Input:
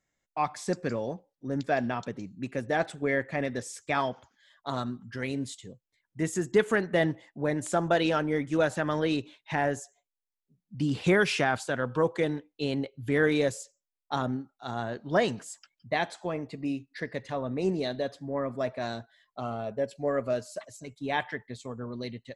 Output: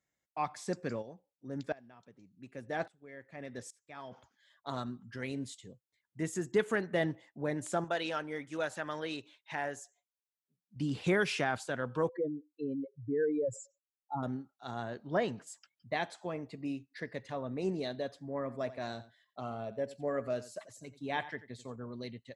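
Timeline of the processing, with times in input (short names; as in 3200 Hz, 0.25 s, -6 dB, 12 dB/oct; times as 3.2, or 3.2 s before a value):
1.01–4.11 dB-ramp tremolo swelling 0.55 Hz -> 1.6 Hz, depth 23 dB
7.84–10.76 low shelf 430 Hz -11 dB
12.09–14.23 spectral contrast raised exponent 2.9
15.07–15.47 LPF 2600 Hz 6 dB/oct
18.34–21.76 echo 88 ms -16 dB
whole clip: HPF 52 Hz; gain -6 dB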